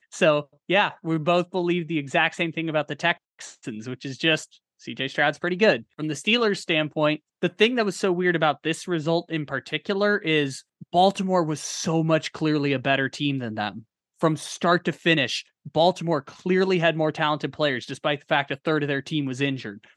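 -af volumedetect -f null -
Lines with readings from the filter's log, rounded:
mean_volume: -24.3 dB
max_volume: -4.2 dB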